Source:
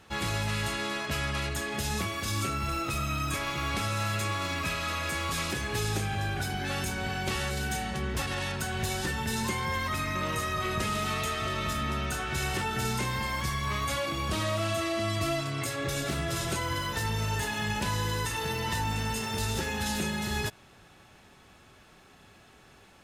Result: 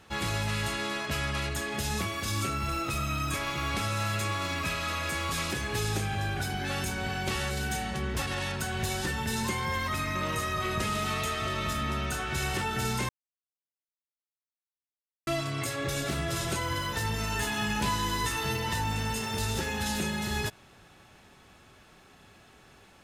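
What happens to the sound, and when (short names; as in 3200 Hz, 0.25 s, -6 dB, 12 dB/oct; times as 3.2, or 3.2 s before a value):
13.09–15.27 mute
17.12–18.57 doubler 15 ms -3 dB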